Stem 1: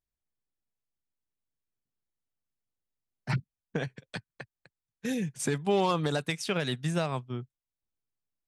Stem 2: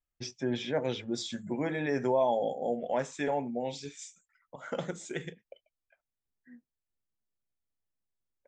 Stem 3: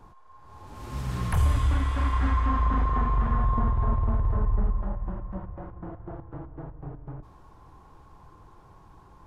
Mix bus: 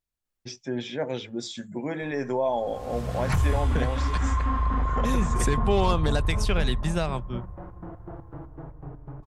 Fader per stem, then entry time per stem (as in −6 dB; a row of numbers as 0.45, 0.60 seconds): +2.0, +1.0, −1.0 decibels; 0.00, 0.25, 2.00 seconds